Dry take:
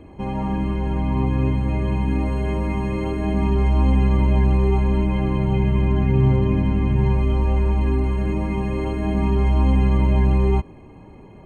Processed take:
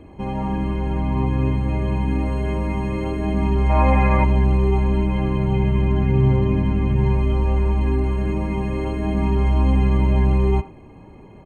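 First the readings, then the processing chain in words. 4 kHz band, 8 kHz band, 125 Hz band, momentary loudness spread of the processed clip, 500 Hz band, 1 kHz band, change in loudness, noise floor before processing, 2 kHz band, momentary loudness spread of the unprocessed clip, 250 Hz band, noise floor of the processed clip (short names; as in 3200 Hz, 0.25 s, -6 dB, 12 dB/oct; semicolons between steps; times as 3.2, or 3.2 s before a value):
0.0 dB, n/a, 0.0 dB, 7 LU, +1.0 dB, +3.0 dB, 0.0 dB, -43 dBFS, +2.5 dB, 6 LU, 0.0 dB, -43 dBFS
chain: spectral gain 3.7–4.24, 480–2700 Hz +11 dB; speakerphone echo 80 ms, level -14 dB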